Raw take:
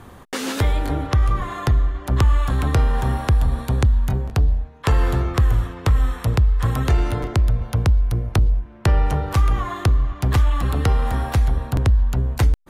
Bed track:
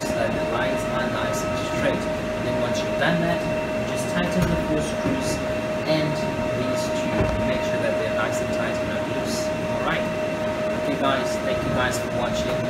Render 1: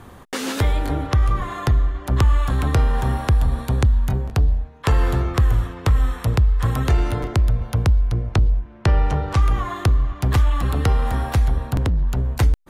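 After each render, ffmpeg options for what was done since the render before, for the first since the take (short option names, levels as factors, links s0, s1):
-filter_complex "[0:a]asettb=1/sr,asplit=3[s0][s1][s2];[s0]atrim=end=8.104[s3];[s1]atrim=start=8.1:end=9.42,asetpts=PTS-STARTPTS,afade=t=in:d=0.004:c=qsin,afade=t=out:st=1.316:d=0.004:c=qsin,lowpass=7300[s4];[s2]atrim=start=9.416[s5];[s3][s4]acrossfade=d=0.004:c1=hsin:c2=qsin[s6];[s6][s5]acrossfade=d=0.004:c1=qsin:c2=hsin,asettb=1/sr,asplit=3[s7][s8][s9];[s7]atrim=end=11.754[s10];[s8]atrim=start=11.75:end=12.35,asetpts=PTS-STARTPTS,afade=t=in:d=0.004:c=qsin,afade=t=out:st=0.596:d=0.004:c=qsin,asoftclip=type=hard:threshold=0.158[s11];[s9]atrim=start=12.346[s12];[s10][s11]acrossfade=d=0.004:c1=hsin:c2=qsin[s13];[s13][s12]acrossfade=d=0.004:c1=qsin:c2=hsin"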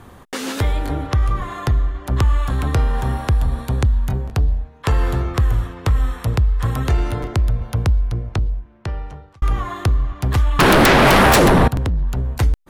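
-filter_complex "[0:a]asettb=1/sr,asplit=3[s0][s1][s2];[s0]atrim=end=10.594[s3];[s1]atrim=start=10.59:end=11.68,asetpts=PTS-STARTPTS,afade=t=in:d=0.004:c=qsin,afade=t=out:st=1.086:d=0.004:c=qsin,aeval=exprs='0.398*sin(PI/2*8.91*val(0)/0.398)':c=same[s4];[s2]atrim=start=11.676[s5];[s3][s4]acrossfade=d=0.004:c1=hsin:c2=qsin[s6];[s6][s5]acrossfade=d=0.004:c1=qsin:c2=hsin,asplit=2[s7][s8];[s7]atrim=end=9.42,asetpts=PTS-STARTPTS,afade=t=out:st=7.96:d=1.46[s9];[s8]atrim=start=9.42,asetpts=PTS-STARTPTS,afade=t=in:d=0.004:c=hsin[s10];[s9][s10]concat=n=2:v=0:a=1"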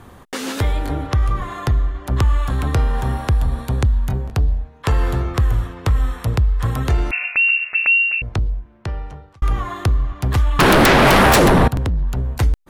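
-filter_complex "[0:a]asettb=1/sr,asplit=3[s0][s1][s2];[s0]atrim=end=7.114[s3];[s1]atrim=start=7.11:end=8.22,asetpts=PTS-STARTPTS,afade=t=in:d=0.004:c=qsin,afade=t=out:st=1.106:d=0.004:c=qsin,lowpass=f=2400:t=q:w=0.5098,lowpass=f=2400:t=q:w=0.6013,lowpass=f=2400:t=q:w=0.9,lowpass=f=2400:t=q:w=2.563,afreqshift=-2800[s4];[s2]atrim=start=8.216[s5];[s3][s4]acrossfade=d=0.004:c1=hsin:c2=qsin[s6];[s6][s5]acrossfade=d=0.004:c1=qsin:c2=hsin"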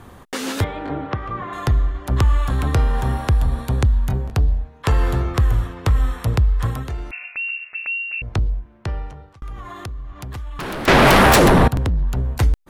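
-filter_complex "[0:a]asettb=1/sr,asplit=3[s0][s1][s2];[s0]atrim=end=0.644[s3];[s1]atrim=start=0.64:end=1.53,asetpts=PTS-STARTPTS,afade=t=in:d=0.004:c=qsin,afade=t=out:st=0.886:d=0.004:c=qsin,highpass=150,lowpass=2500[s4];[s2]atrim=start=1.526[s5];[s3][s4]acrossfade=d=0.004:c1=hsin:c2=qsin[s6];[s6][s5]acrossfade=d=0.004:c1=qsin:c2=hsin,asettb=1/sr,asplit=3[s7][s8][s9];[s7]atrim=end=9.104[s10];[s8]atrim=start=9.1:end=10.88,asetpts=PTS-STARTPTS,afade=t=in:d=0.004:c=qsin,afade=t=out:st=1.776:d=0.004:c=qsin,acompressor=threshold=0.0224:ratio=3:attack=3.2:release=140:knee=1:detection=peak[s11];[s9]atrim=start=10.876[s12];[s10][s11]acrossfade=d=0.004:c1=hsin:c2=qsin[s13];[s13][s12]acrossfade=d=0.004:c1=qsin:c2=hsin,asplit=3[s14][s15][s16];[s14]atrim=end=6.89,asetpts=PTS-STARTPTS,afade=t=out:st=6.59:d=0.3:silence=0.298538[s17];[s15]atrim=start=6.89:end=8.07,asetpts=PTS-STARTPTS,volume=0.299[s18];[s16]atrim=start=8.07,asetpts=PTS-STARTPTS,afade=t=in:d=0.3:silence=0.298538[s19];[s17][s18][s19]concat=n=3:v=0:a=1"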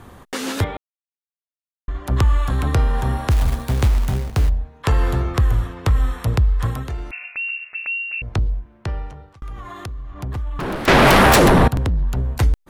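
-filter_complex "[0:a]asplit=3[s0][s1][s2];[s0]afade=t=out:st=3.29:d=0.02[s3];[s1]acrusher=bits=4:mode=log:mix=0:aa=0.000001,afade=t=in:st=3.29:d=0.02,afade=t=out:st=4.48:d=0.02[s4];[s2]afade=t=in:st=4.48:d=0.02[s5];[s3][s4][s5]amix=inputs=3:normalize=0,asettb=1/sr,asplit=3[s6][s7][s8];[s6]atrim=end=10.144[s9];[s7]atrim=start=10.14:end=10.76,asetpts=PTS-STARTPTS,afade=t=in:d=0.004:c=qsin,afade=t=out:st=0.616:d=0.004:c=qsin,tiltshelf=f=1500:g=5[s10];[s8]atrim=start=10.756[s11];[s9][s10]acrossfade=d=0.004:c1=hsin:c2=qsin[s12];[s12][s11]acrossfade=d=0.004:c1=qsin:c2=hsin,asplit=3[s13][s14][s15];[s13]atrim=end=0.77,asetpts=PTS-STARTPTS,afade=t=out:st=0.766:d=0.004:c=hsin[s16];[s14]atrim=start=0.77:end=1.88,asetpts=PTS-STARTPTS,volume=0[s17];[s15]atrim=start=1.88,asetpts=PTS-STARTPTS,afade=t=in:d=0.004:c=hsin[s18];[s16][s17][s18]concat=n=3:v=0:a=1"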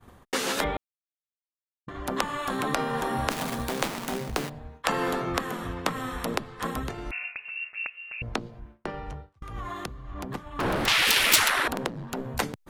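-af "agate=range=0.0224:threshold=0.02:ratio=3:detection=peak,afftfilt=real='re*lt(hypot(re,im),0.355)':imag='im*lt(hypot(re,im),0.355)':win_size=1024:overlap=0.75"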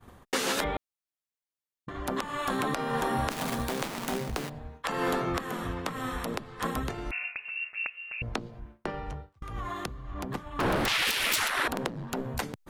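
-af "alimiter=limit=0.158:level=0:latency=1:release=204"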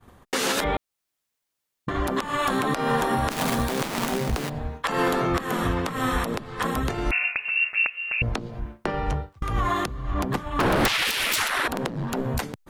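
-af "dynaudnorm=f=170:g=5:m=3.98,alimiter=limit=0.2:level=0:latency=1:release=242"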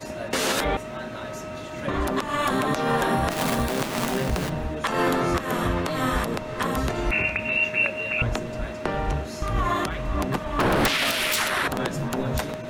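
-filter_complex "[1:a]volume=0.316[s0];[0:a][s0]amix=inputs=2:normalize=0"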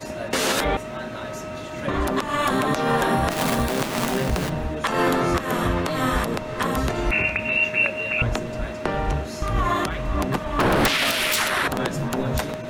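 -af "volume=1.26"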